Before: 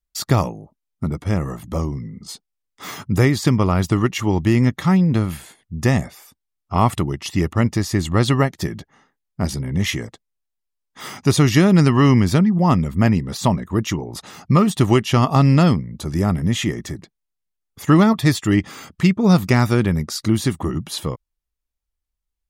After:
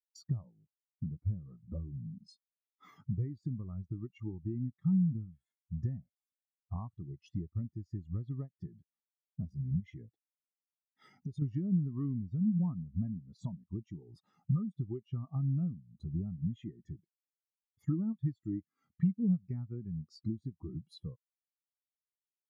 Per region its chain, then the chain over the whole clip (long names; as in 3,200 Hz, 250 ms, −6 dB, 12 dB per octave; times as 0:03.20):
0:09.80–0:11.42: downward compressor 5 to 1, threshold −21 dBFS + Butterworth band-reject 1,100 Hz, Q 3.6
whole clip: downward compressor 6 to 1, threshold −30 dBFS; every bin expanded away from the loudest bin 2.5 to 1; level −2 dB